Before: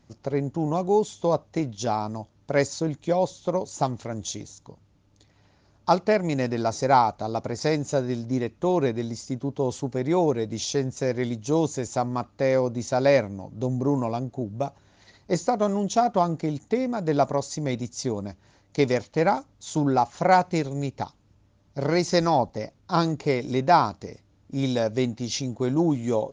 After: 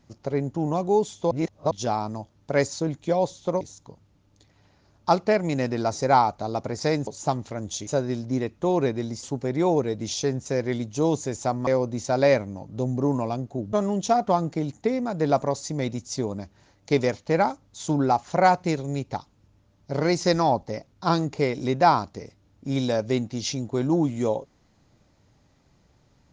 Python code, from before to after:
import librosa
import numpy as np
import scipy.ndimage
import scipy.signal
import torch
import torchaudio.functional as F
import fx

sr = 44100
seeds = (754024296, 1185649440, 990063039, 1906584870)

y = fx.edit(x, sr, fx.reverse_span(start_s=1.31, length_s=0.4),
    fx.move(start_s=3.61, length_s=0.8, to_s=7.87),
    fx.cut(start_s=9.23, length_s=0.51),
    fx.cut(start_s=12.18, length_s=0.32),
    fx.cut(start_s=14.56, length_s=1.04), tone=tone)